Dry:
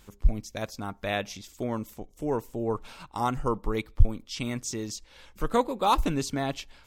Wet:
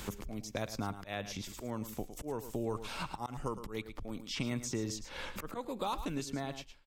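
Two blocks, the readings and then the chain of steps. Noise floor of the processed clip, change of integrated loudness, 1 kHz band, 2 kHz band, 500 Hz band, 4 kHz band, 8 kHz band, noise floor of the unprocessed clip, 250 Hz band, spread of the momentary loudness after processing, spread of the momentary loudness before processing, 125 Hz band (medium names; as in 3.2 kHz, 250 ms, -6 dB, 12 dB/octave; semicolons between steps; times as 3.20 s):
-53 dBFS, -9.0 dB, -11.5 dB, -6.5 dB, -9.5 dB, -5.5 dB, -5.0 dB, -57 dBFS, -7.0 dB, 6 LU, 11 LU, -9.5 dB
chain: fade out at the end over 1.66 s; slow attack 739 ms; compression 2:1, threshold -42 dBFS, peak gain reduction 8.5 dB; delay 108 ms -12.5 dB; three bands compressed up and down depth 70%; trim +5.5 dB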